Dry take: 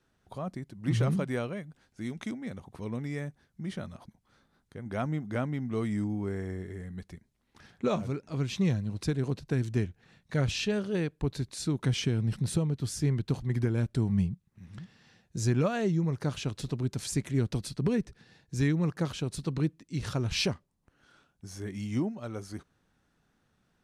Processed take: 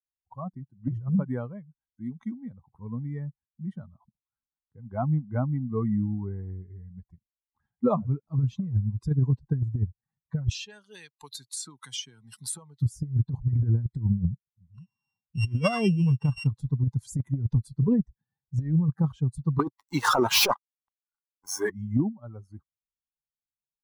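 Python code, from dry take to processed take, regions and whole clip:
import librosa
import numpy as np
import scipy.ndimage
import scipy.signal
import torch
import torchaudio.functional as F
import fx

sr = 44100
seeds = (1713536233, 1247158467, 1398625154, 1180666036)

y = fx.chain(x, sr, fx.highpass(hz=1400.0, slope=6),
    fx.high_shelf(hz=2300.0, db=8.0),
    fx.band_squash(depth_pct=100), at=(10.51, 12.82))
y = fx.chain(y, sr, fx.sample_sort(block=16),
    fx.lowpass(hz=4800.0, slope=12),
    fx.high_shelf(hz=2400.0, db=11.5), at=(14.74, 16.47))
y = fx.chain(y, sr, fx.highpass(hz=500.0, slope=12),
    fx.leveller(passes=5), at=(19.59, 21.7))
y = fx.bin_expand(y, sr, power=2.0)
y = fx.graphic_eq(y, sr, hz=(125, 500, 1000, 2000, 4000, 8000), db=(8, -4, 7, -11, -4, -9))
y = fx.over_compress(y, sr, threshold_db=-29.0, ratio=-0.5)
y = F.gain(torch.from_numpy(y), 7.0).numpy()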